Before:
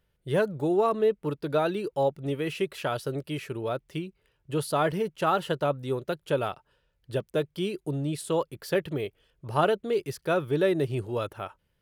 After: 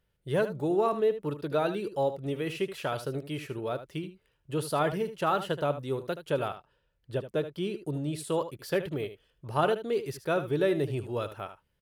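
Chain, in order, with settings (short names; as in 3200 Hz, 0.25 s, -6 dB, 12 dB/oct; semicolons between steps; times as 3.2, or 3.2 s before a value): 6.48–7.86 high shelf 4700 Hz -6.5 dB; on a send: echo 76 ms -12 dB; on the sum: gain -2.5 dB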